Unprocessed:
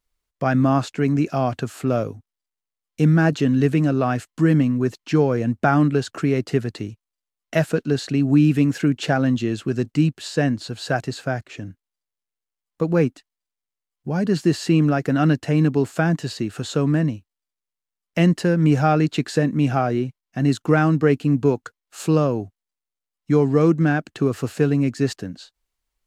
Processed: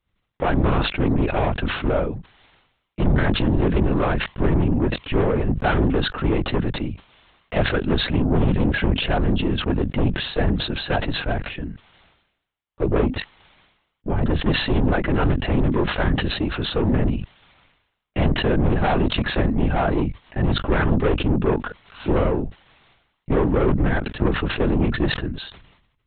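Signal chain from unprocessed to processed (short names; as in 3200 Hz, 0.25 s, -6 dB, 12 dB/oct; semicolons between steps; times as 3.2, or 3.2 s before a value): tube stage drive 19 dB, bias 0.3; LPC vocoder at 8 kHz whisper; sustainer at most 67 dB/s; gain +4 dB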